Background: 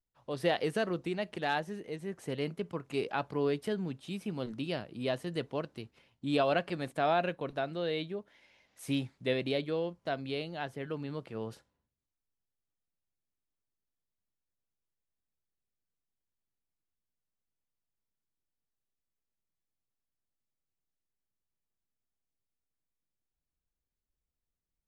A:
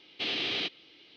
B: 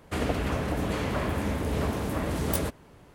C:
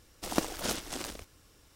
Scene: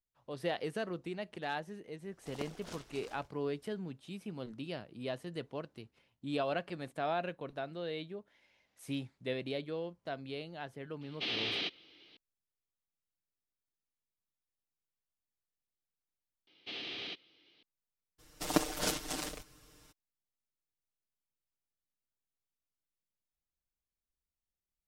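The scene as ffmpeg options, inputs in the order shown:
-filter_complex "[3:a]asplit=2[a][b];[1:a]asplit=2[c][d];[0:a]volume=-6dB[e];[a]highshelf=f=9k:g=-12[f];[b]aecho=1:1:6.6:0.9[g];[e]asplit=2[h][i];[h]atrim=end=16.474[j];[d]atrim=end=1.16,asetpts=PTS-STARTPTS,volume=-10.5dB[k];[i]atrim=start=17.626[l];[f]atrim=end=1.75,asetpts=PTS-STARTPTS,volume=-14dB,afade=t=in:d=0.004:c=hsin,afade=t=out:st=1.746:d=0.004:c=hsin,adelay=2030[m];[c]atrim=end=1.16,asetpts=PTS-STARTPTS,volume=-4dB,afade=t=in:d=0.004:c=hsin,afade=t=out:st=1.156:d=0.004:c=hsin,adelay=11010[n];[g]atrim=end=1.75,asetpts=PTS-STARTPTS,volume=-2.5dB,afade=t=in:d=0.02,afade=t=out:st=1.73:d=0.02,adelay=18180[o];[j][k]acrossfade=d=0.004:c1=hsin:c2=hsin[p];[p][l]acrossfade=d=0.004:c1=hsin:c2=hsin[q];[q][m][n][o]amix=inputs=4:normalize=0"

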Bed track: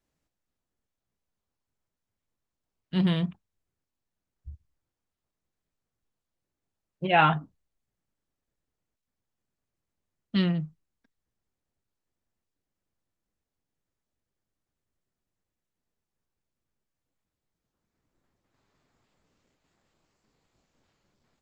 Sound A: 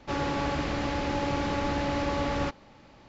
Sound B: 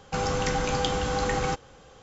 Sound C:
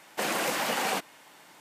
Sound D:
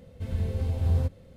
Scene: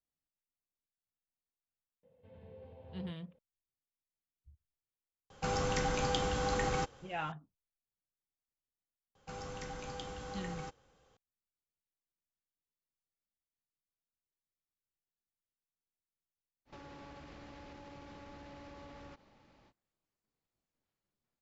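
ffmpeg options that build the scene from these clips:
-filter_complex "[2:a]asplit=2[a][b];[0:a]volume=-18.5dB[c];[4:a]highpass=180,equalizer=f=230:t=q:w=4:g=-4,equalizer=f=330:t=q:w=4:g=-7,equalizer=f=510:t=q:w=4:g=7,equalizer=f=890:t=q:w=4:g=6,equalizer=f=1.3k:t=q:w=4:g=-7,equalizer=f=2.1k:t=q:w=4:g=-4,lowpass=f=3k:w=0.5412,lowpass=f=3k:w=1.3066[d];[1:a]acompressor=threshold=-37dB:ratio=6:attack=3.2:release=140:knee=1:detection=peak[e];[d]atrim=end=1.36,asetpts=PTS-STARTPTS,volume=-17.5dB,afade=t=in:d=0.004:c=hsin,afade=t=out:st=1.356:d=0.004:c=hsin,adelay=2030[f];[a]atrim=end=2.02,asetpts=PTS-STARTPTS,volume=-6.5dB,afade=t=in:d=0.004:c=hsin,afade=t=out:st=2.016:d=0.004:c=hsin,adelay=5300[g];[b]atrim=end=2.02,asetpts=PTS-STARTPTS,volume=-17.5dB,afade=t=in:d=0.004:c=hsin,afade=t=out:st=2.016:d=0.004:c=hsin,adelay=9150[h];[e]atrim=end=3.08,asetpts=PTS-STARTPTS,volume=-11.5dB,afade=t=in:d=0.05,afade=t=out:st=3.03:d=0.05,adelay=16650[i];[c][f][g][h][i]amix=inputs=5:normalize=0"

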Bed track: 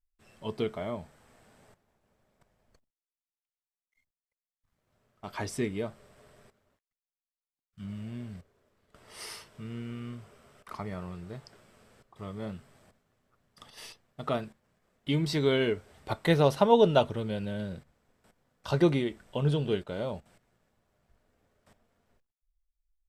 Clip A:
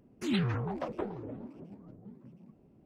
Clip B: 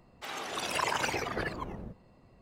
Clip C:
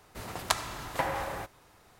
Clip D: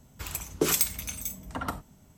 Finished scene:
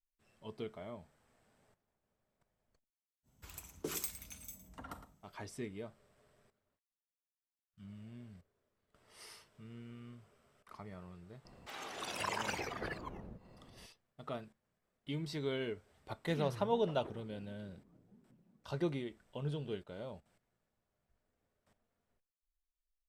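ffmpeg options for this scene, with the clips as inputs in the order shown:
-filter_complex "[0:a]volume=-12dB[a];[4:a]asplit=2[b][c];[c]adelay=110.8,volume=-11dB,highshelf=f=4k:g=-2.49[d];[b][d]amix=inputs=2:normalize=0[e];[2:a]acompressor=mode=upward:threshold=-41dB:ratio=2.5:attack=3.2:release=140:knee=2.83:detection=peak[f];[e]atrim=end=2.17,asetpts=PTS-STARTPTS,volume=-15.5dB,afade=t=in:d=0.05,afade=t=out:st=2.12:d=0.05,adelay=3230[g];[f]atrim=end=2.41,asetpts=PTS-STARTPTS,volume=-7.5dB,afade=t=in:d=0.004:c=hsin,afade=t=out:st=2.406:d=0.004:c=hsin,adelay=11450[h];[1:a]atrim=end=2.85,asetpts=PTS-STARTPTS,volume=-14.5dB,afade=t=in:d=0.004:c=hsin,afade=t=out:st=2.846:d=0.004:c=hsin,adelay=16060[i];[a][g][h][i]amix=inputs=4:normalize=0"

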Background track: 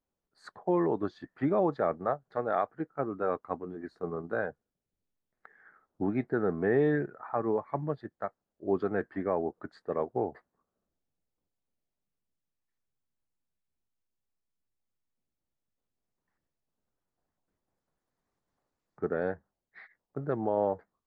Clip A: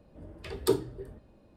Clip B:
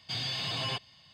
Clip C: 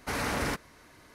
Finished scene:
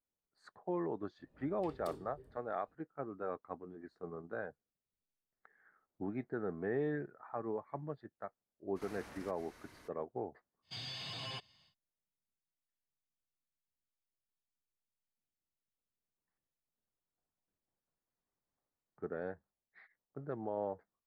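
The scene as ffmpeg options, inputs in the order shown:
-filter_complex "[0:a]volume=-10dB[a];[1:a]volume=29.5dB,asoftclip=hard,volume=-29.5dB[b];[3:a]acompressor=threshold=-47dB:ratio=6:attack=3.2:release=140:knee=1:detection=peak[c];[b]atrim=end=1.56,asetpts=PTS-STARTPTS,volume=-15.5dB,afade=t=in:d=0.004:c=hsin,afade=t=out:st=1.556:d=0.004:c=hsin,adelay=1190[d];[c]atrim=end=1.14,asetpts=PTS-STARTPTS,volume=-4dB,afade=t=in:d=0.02,afade=t=out:st=1.12:d=0.02,adelay=8750[e];[2:a]atrim=end=1.13,asetpts=PTS-STARTPTS,volume=-10.5dB,afade=t=in:d=0.1,afade=t=out:st=1.03:d=0.1,adelay=10620[f];[a][d][e][f]amix=inputs=4:normalize=0"

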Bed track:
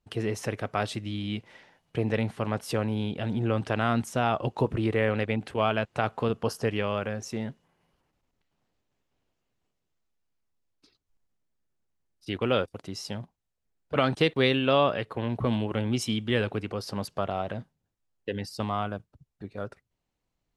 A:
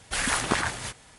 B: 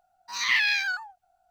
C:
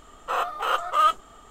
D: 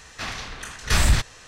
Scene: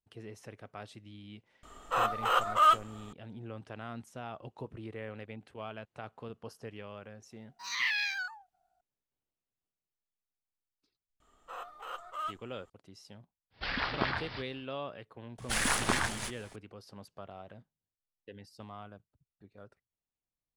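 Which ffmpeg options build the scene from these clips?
-filter_complex "[3:a]asplit=2[a][b];[1:a]asplit=2[c][d];[0:a]volume=-17dB[e];[c]aresample=11025,aresample=44100[f];[d]aeval=exprs='if(lt(val(0),0),0.447*val(0),val(0))':c=same[g];[a]atrim=end=1.5,asetpts=PTS-STARTPTS,volume=-3dB,afade=t=in:d=0.004:c=hsin,afade=t=out:st=1.496:d=0.004:c=hsin,adelay=1630[h];[2:a]atrim=end=1.5,asetpts=PTS-STARTPTS,volume=-8dB,afade=t=in:d=0.004:c=hsin,afade=t=out:st=1.496:d=0.004:c=hsin,adelay=7310[i];[b]atrim=end=1.5,asetpts=PTS-STARTPTS,volume=-18dB,afade=t=in:d=0.004:c=hsin,afade=t=out:st=1.496:d=0.004:c=hsin,adelay=11200[j];[f]atrim=end=1.18,asetpts=PTS-STARTPTS,volume=-6.5dB,afade=t=in:d=0.1,afade=t=out:st=1.08:d=0.1,adelay=13500[k];[g]atrim=end=1.18,asetpts=PTS-STARTPTS,volume=-1dB,afade=t=in:d=0.004:c=hsin,afade=t=out:st=1.176:d=0.004:c=hsin,adelay=15380[l];[e][h][i][j][k][l]amix=inputs=6:normalize=0"

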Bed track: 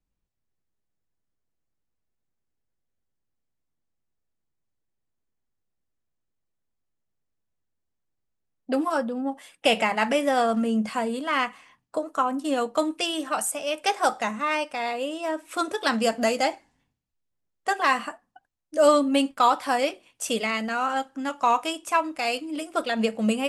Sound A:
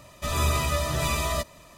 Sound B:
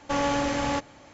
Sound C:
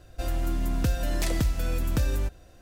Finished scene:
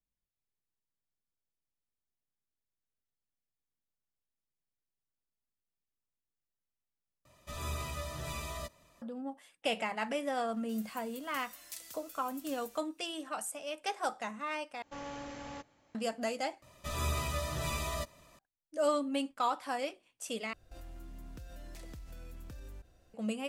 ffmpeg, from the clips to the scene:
-filter_complex "[1:a]asplit=2[a][b];[3:a]asplit=2[c][d];[0:a]volume=-12dB[e];[c]aderivative[f];[d]acompressor=threshold=-32dB:ratio=6:attack=3.2:release=140:knee=1:detection=peak[g];[e]asplit=5[h][i][j][k][l];[h]atrim=end=7.254[m];[a]atrim=end=1.77,asetpts=PTS-STARTPTS,volume=-14dB[n];[i]atrim=start=9.016:end=14.824[o];[2:a]atrim=end=1.13,asetpts=PTS-STARTPTS,volume=-18dB[p];[j]atrim=start=15.946:end=16.624[q];[b]atrim=end=1.77,asetpts=PTS-STARTPTS,volume=-9.5dB[r];[k]atrim=start=18.386:end=20.534[s];[g]atrim=end=2.61,asetpts=PTS-STARTPTS,volume=-12.5dB[t];[l]atrim=start=23.136[u];[f]atrim=end=2.61,asetpts=PTS-STARTPTS,volume=-9.5dB,afade=t=in:d=0.004:c=hsin,afade=t=out:st=2.606:d=0.004:c=hsin,adelay=463050S[v];[m][n]acrossfade=d=0.004:c1=hsin:c2=hsin[w];[w][o]acrossfade=d=0.004:c1=hsin:c2=hsin[x];[x][p]acrossfade=d=0.004:c1=hsin:c2=hsin[y];[y][q]acrossfade=d=0.004:c1=hsin:c2=hsin[z];[z][r]acrossfade=d=0.004:c1=hsin:c2=hsin[aa];[aa][s]acrossfade=d=0.004:c1=hsin:c2=hsin[ab];[ab][t]acrossfade=d=0.004:c1=hsin:c2=hsin[ac];[ac][u]acrossfade=d=0.004:c1=hsin:c2=hsin[ad];[ad][v]amix=inputs=2:normalize=0"

